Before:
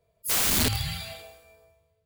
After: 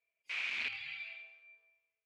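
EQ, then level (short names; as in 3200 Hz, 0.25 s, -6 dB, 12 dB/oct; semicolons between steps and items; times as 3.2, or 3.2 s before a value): band-pass 2400 Hz, Q 8.3; air absorption 140 m; +5.0 dB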